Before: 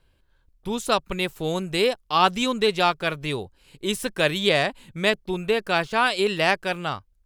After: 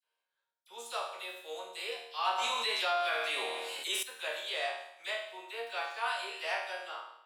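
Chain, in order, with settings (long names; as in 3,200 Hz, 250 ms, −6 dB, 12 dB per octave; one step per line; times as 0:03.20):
high-pass filter 560 Hz 24 dB per octave
resonators tuned to a chord D#2 minor, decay 0.74 s
all-pass dispersion lows, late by 41 ms, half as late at 2,000 Hz
0:02.38–0:04.03: envelope flattener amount 70%
level +3.5 dB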